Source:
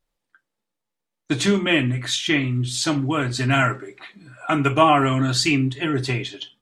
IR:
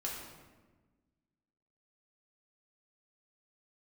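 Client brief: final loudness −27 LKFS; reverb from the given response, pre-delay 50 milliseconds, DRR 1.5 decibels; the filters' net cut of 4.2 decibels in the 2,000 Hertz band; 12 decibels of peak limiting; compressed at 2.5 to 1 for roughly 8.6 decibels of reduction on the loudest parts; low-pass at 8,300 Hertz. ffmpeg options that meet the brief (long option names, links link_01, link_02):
-filter_complex "[0:a]lowpass=8300,equalizer=frequency=2000:width_type=o:gain=-5.5,acompressor=threshold=-25dB:ratio=2.5,alimiter=limit=-23dB:level=0:latency=1,asplit=2[link_01][link_02];[1:a]atrim=start_sample=2205,adelay=50[link_03];[link_02][link_03]afir=irnorm=-1:irlink=0,volume=-3dB[link_04];[link_01][link_04]amix=inputs=2:normalize=0,volume=2dB"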